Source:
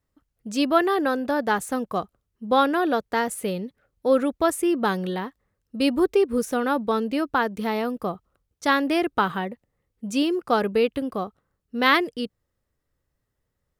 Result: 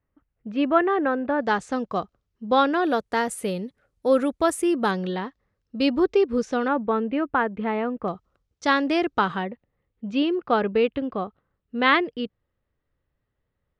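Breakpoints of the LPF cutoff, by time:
LPF 24 dB/oct
2600 Hz
from 1.41 s 6300 Hz
from 2.84 s 11000 Hz
from 4.91 s 5800 Hz
from 6.68 s 2600 Hz
from 8.08 s 6800 Hz
from 9.43 s 3600 Hz

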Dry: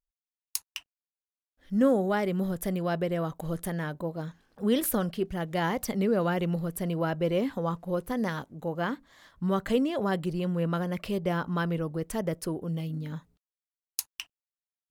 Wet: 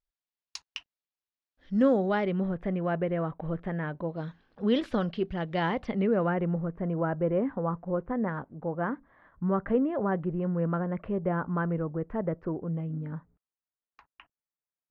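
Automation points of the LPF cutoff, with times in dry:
LPF 24 dB/oct
1.99 s 5200 Hz
2.54 s 2400 Hz
3.82 s 2400 Hz
4.25 s 4200 Hz
5.61 s 4200 Hz
6.53 s 1700 Hz

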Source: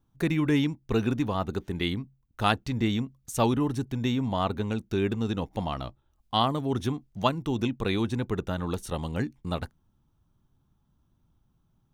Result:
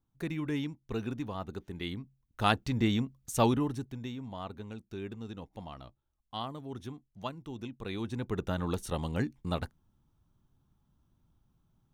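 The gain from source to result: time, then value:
1.8 s -9.5 dB
2.57 s -1.5 dB
3.48 s -1.5 dB
4.13 s -13.5 dB
7.71 s -13.5 dB
8.49 s -2 dB

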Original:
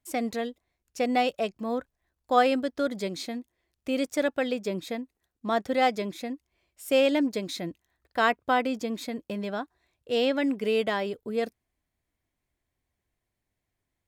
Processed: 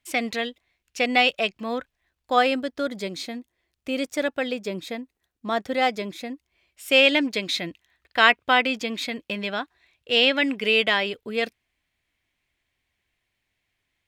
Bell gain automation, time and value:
bell 2700 Hz 1.8 oct
1.78 s +14 dB
2.68 s +5 dB
6.33 s +5 dB
7.05 s +15 dB

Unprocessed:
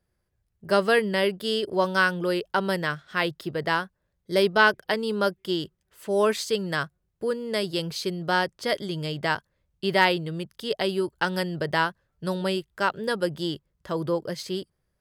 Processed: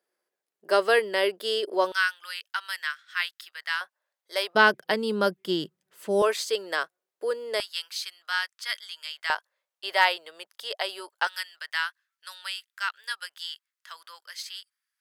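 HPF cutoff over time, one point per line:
HPF 24 dB/oct
350 Hz
from 1.92 s 1400 Hz
from 3.81 s 660 Hz
from 4.55 s 160 Hz
from 6.22 s 400 Hz
from 7.6 s 1300 Hz
from 9.3 s 630 Hz
from 11.27 s 1400 Hz

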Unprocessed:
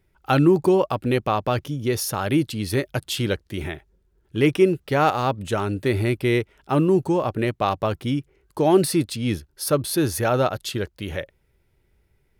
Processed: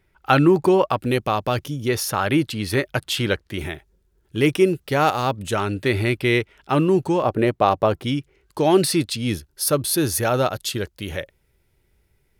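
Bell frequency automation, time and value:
bell +6 dB 2.6 oct
1700 Hz
from 0.99 s 13000 Hz
from 1.89 s 1600 Hz
from 3.59 s 13000 Hz
from 5.55 s 2700 Hz
from 7.23 s 550 Hz
from 8.04 s 3700 Hz
from 9.17 s 12000 Hz

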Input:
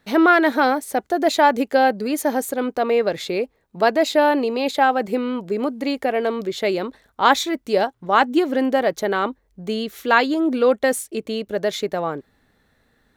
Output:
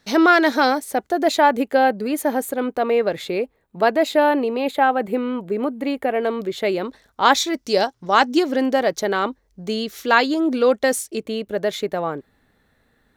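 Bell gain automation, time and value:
bell 5500 Hz 0.88 oct
+12 dB
from 0.8 s 0 dB
from 1.39 s -6 dB
from 4.34 s -13 dB
from 6.23 s -5 dB
from 6.85 s +5.5 dB
from 7.54 s +14 dB
from 8.43 s +6.5 dB
from 11.23 s -3.5 dB

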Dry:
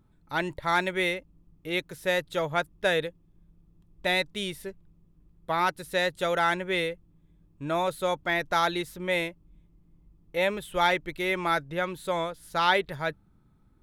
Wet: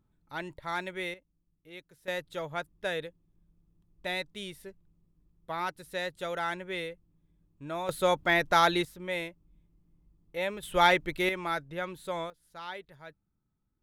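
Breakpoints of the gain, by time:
-9 dB
from 1.14 s -18 dB
from 2.08 s -8 dB
from 7.89 s +2 dB
from 8.85 s -6.5 dB
from 10.63 s +1.5 dB
from 11.29 s -6 dB
from 12.3 s -18 dB

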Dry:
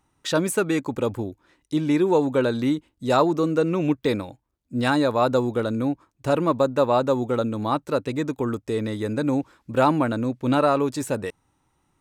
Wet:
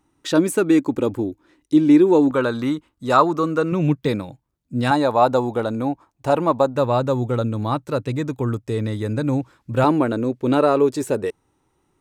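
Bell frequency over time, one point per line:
bell +9.5 dB 0.67 oct
310 Hz
from 2.31 s 1200 Hz
from 3.72 s 150 Hz
from 4.91 s 800 Hz
from 6.75 s 120 Hz
from 9.84 s 400 Hz

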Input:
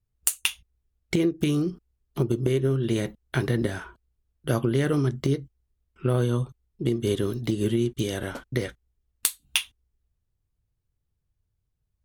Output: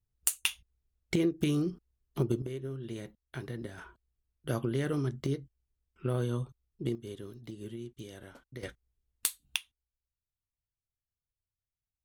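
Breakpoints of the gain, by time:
-5 dB
from 2.42 s -15 dB
from 3.78 s -8 dB
from 6.95 s -18 dB
from 8.63 s -6.5 dB
from 9.56 s -19 dB

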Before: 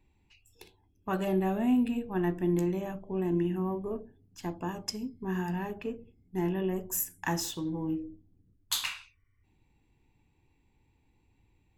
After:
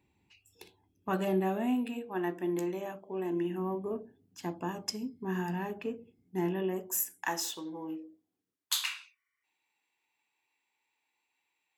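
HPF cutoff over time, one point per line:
1.09 s 110 Hz
1.82 s 340 Hz
3.32 s 340 Hz
3.88 s 160 Hz
6.36 s 160 Hz
7.28 s 440 Hz
7.99 s 440 Hz
8.85 s 1100 Hz

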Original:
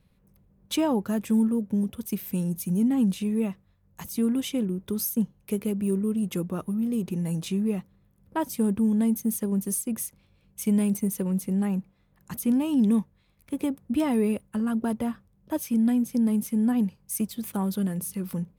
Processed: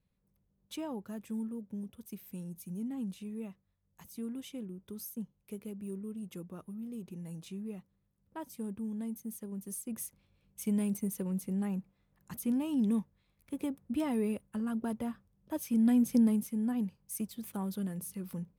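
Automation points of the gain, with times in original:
9.59 s -15 dB
10.03 s -8 dB
15.53 s -8 dB
16.14 s 0 dB
16.5 s -9 dB

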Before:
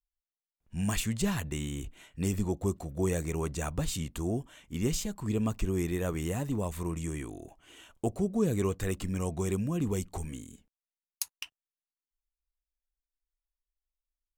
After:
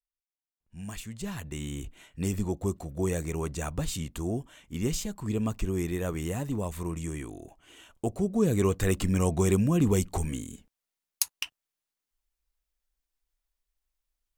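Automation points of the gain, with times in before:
1.11 s -9 dB
1.71 s +0.5 dB
8.06 s +0.5 dB
9 s +7 dB

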